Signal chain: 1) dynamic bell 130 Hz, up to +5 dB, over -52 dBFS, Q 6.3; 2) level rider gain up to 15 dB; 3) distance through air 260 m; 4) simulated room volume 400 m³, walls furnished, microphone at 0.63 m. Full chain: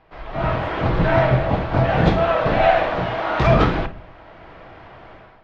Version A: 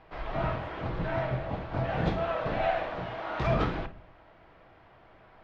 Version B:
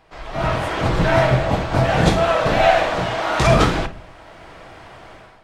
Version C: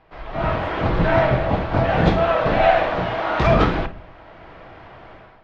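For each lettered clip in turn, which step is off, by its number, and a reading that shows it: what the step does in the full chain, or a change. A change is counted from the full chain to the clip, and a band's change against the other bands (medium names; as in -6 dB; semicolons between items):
2, loudness change -12.5 LU; 3, 4 kHz band +5.0 dB; 1, 125 Hz band -2.0 dB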